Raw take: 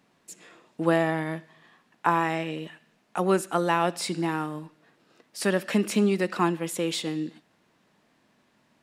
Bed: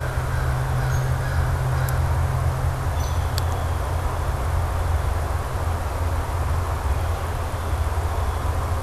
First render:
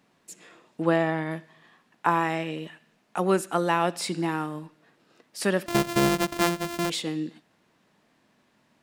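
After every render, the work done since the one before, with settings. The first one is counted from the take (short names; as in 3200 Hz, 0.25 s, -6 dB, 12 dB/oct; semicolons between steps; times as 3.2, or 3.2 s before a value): 0.82–1.31 air absorption 55 m; 5.66–6.9 sample sorter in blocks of 128 samples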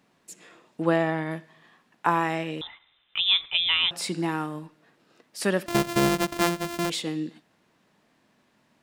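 2.61–3.91 inverted band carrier 3800 Hz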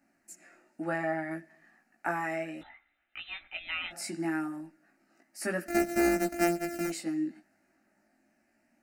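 fixed phaser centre 690 Hz, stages 8; chorus voices 2, 0.33 Hz, delay 18 ms, depth 1.1 ms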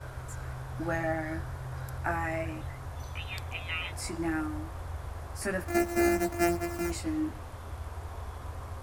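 add bed -16.5 dB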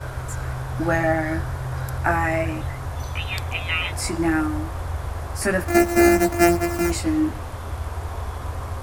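gain +10.5 dB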